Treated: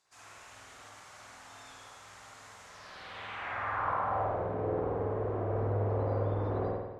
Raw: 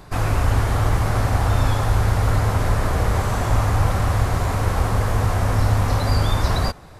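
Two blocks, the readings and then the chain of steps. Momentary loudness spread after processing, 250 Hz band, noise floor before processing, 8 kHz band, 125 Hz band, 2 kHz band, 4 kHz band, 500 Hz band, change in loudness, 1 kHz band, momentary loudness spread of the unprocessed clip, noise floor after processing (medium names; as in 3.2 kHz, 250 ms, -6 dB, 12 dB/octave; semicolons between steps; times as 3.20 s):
19 LU, -13.5 dB, -41 dBFS, -21.5 dB, -18.5 dB, -13.5 dB, -20.5 dB, -7.0 dB, -12.5 dB, -11.0 dB, 2 LU, -53 dBFS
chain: treble shelf 4.3 kHz -11 dB; band-pass sweep 7 kHz -> 420 Hz, 2.65–4.46 s; spring tank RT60 1.1 s, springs 49 ms, chirp 45 ms, DRR -6 dB; trim -7 dB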